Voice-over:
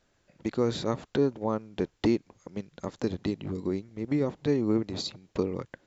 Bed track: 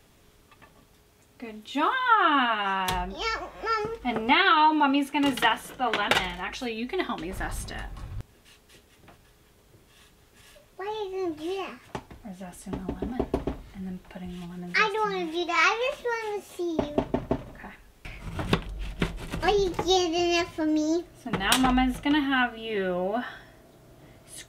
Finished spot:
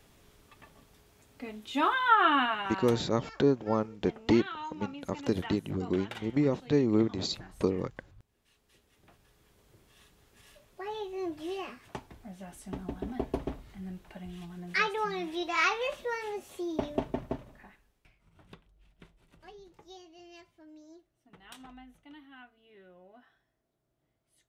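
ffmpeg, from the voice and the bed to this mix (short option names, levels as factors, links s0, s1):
-filter_complex "[0:a]adelay=2250,volume=1.06[s0];[1:a]volume=4.47,afade=t=out:st=2.26:d=0.75:silence=0.125893,afade=t=in:st=8.28:d=1.37:silence=0.177828,afade=t=out:st=16.96:d=1.2:silence=0.0707946[s1];[s0][s1]amix=inputs=2:normalize=0"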